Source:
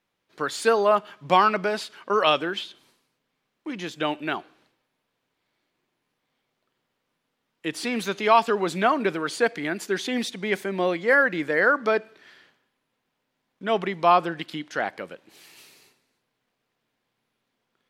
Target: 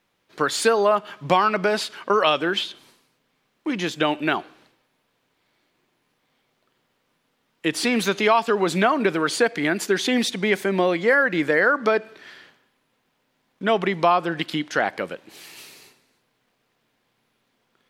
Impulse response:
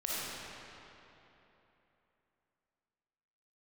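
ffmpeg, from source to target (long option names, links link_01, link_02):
-af "acompressor=threshold=-24dB:ratio=3,volume=7.5dB"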